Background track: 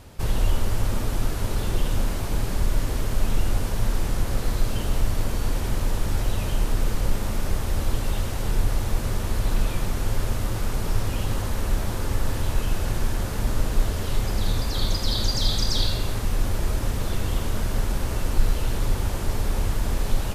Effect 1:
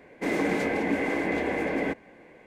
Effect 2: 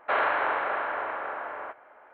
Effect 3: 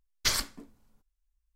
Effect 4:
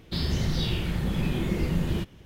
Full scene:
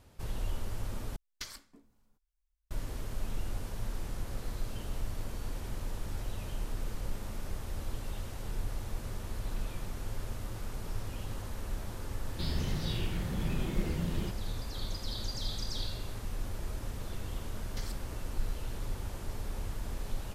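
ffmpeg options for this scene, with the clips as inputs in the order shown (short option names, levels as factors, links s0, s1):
-filter_complex "[3:a]asplit=2[s0][s1];[0:a]volume=0.211[s2];[s0]acompressor=threshold=0.00891:ratio=4:attack=31:release=634:knee=1:detection=peak[s3];[s1]acompressor=threshold=0.0112:ratio=6:attack=3.2:release=140:knee=1:detection=peak[s4];[s2]asplit=2[s5][s6];[s5]atrim=end=1.164[s7];[s3]atrim=end=1.55,asetpts=PTS-STARTPTS,volume=0.562[s8];[s6]atrim=start=2.706[s9];[4:a]atrim=end=2.25,asetpts=PTS-STARTPTS,volume=0.398,afade=t=in:d=0.004:c=hsin,afade=t=out:st=2.246:d=0.004:c=hsin,adelay=12270[s10];[s4]atrim=end=1.55,asetpts=PTS-STARTPTS,volume=0.531,afade=t=in:d=0.004:c=hsin,afade=t=out:st=1.546:d=0.004:c=hsin,adelay=17520[s11];[s7][s8]acrossfade=d=0.004:c1=hsin:c2=hsin[s12];[s12][s9]acrossfade=d=0.004:c1=hsin:c2=hsin[s13];[s13][s10][s11]amix=inputs=3:normalize=0"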